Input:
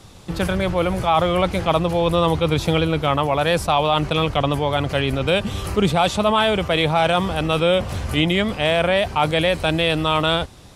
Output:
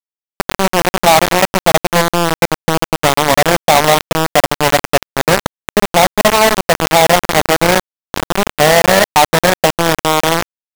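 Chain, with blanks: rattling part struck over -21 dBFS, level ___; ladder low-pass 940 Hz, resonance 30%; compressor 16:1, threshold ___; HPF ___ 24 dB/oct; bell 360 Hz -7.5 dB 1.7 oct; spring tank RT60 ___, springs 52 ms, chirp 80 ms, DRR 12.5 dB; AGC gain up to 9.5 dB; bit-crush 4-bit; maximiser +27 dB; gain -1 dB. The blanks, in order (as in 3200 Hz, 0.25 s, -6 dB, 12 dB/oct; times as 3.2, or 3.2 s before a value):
-14 dBFS, -28 dBFS, 180 Hz, 1.2 s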